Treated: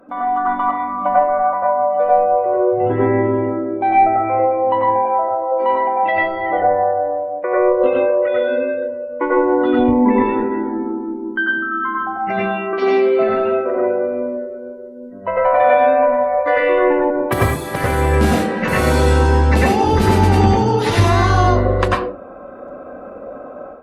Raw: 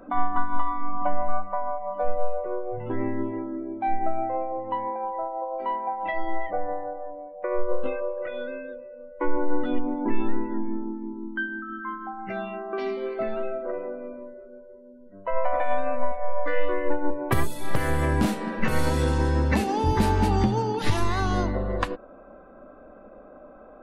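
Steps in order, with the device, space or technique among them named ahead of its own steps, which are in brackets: 9.78–10.31 ripple EQ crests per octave 0.93, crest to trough 13 dB; far-field microphone of a smart speaker (reverb RT60 0.40 s, pre-delay 88 ms, DRR -3.5 dB; HPF 160 Hz 6 dB/oct; AGC gain up to 9.5 dB; Opus 48 kbps 48000 Hz)

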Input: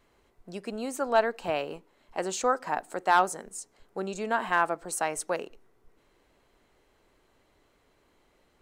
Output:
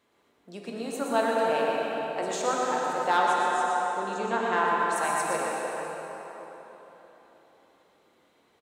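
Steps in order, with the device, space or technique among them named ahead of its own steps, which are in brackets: PA in a hall (HPF 150 Hz 12 dB/oct; bell 3600 Hz +6 dB 0.21 oct; echo 0.121 s -7 dB; reverb RT60 3.6 s, pre-delay 98 ms, DRR 1.5 dB); 3.17–4.96 LPF 7300 Hz 12 dB/oct; plate-style reverb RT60 3.2 s, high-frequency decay 0.6×, DRR 1 dB; gain -3.5 dB

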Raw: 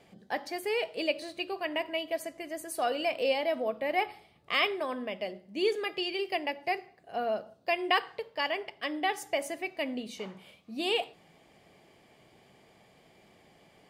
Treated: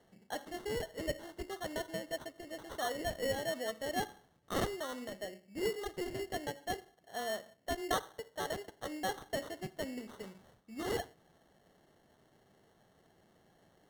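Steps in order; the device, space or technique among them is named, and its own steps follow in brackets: crushed at another speed (playback speed 0.5×; sample-and-hold 36×; playback speed 2×); gain -7 dB

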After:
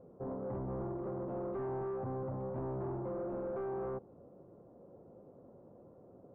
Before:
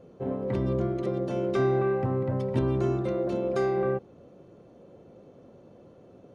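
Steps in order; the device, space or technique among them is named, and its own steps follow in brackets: overdriven synthesiser ladder filter (soft clip -30.5 dBFS, distortion -8 dB; ladder low-pass 1300 Hz, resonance 25%)

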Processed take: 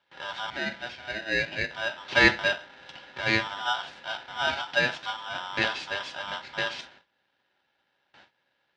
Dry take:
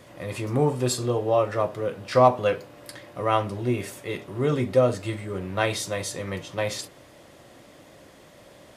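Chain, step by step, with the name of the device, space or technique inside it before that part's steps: 4.5–5.06 tilt +3 dB/oct; gate with hold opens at -38 dBFS; 0.5–1.71 three-band isolator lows -19 dB, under 510 Hz, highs -21 dB, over 3400 Hz; ring modulator pedal into a guitar cabinet (polarity switched at an audio rate 1100 Hz; speaker cabinet 90–4200 Hz, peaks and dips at 98 Hz -6 dB, 470 Hz -10 dB, 700 Hz -4 dB, 1200 Hz -8 dB)

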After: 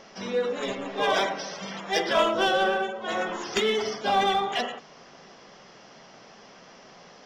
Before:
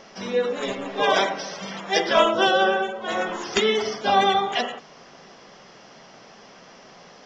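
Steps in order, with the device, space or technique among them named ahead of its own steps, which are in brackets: parallel distortion (in parallel at -4.5 dB: hard clip -21.5 dBFS, distortion -7 dB); on the sum: gain -6.5 dB

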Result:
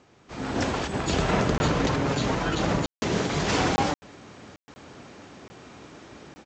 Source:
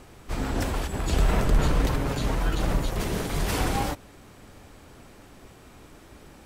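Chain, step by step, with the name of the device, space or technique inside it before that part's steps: call with lost packets (HPF 120 Hz 12 dB/oct; downsampling 16000 Hz; AGC gain up to 12.5 dB; packet loss bursts); gain -7.5 dB

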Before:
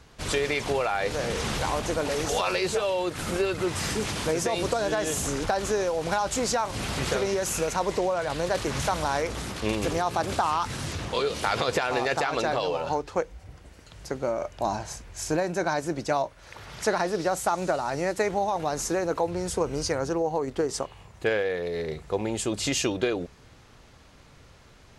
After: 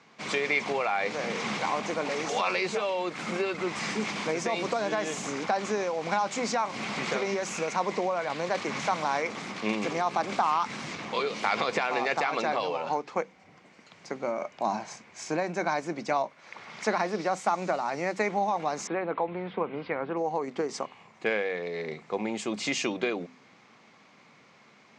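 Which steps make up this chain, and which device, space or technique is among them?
television speaker (speaker cabinet 160–7000 Hz, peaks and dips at 210 Hz +7 dB, 770 Hz +4 dB, 1100 Hz +6 dB, 2200 Hz +10 dB); de-hum 63.8 Hz, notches 4; 18.87–20.17 elliptic low-pass 3500 Hz, stop band 50 dB; gain -4.5 dB

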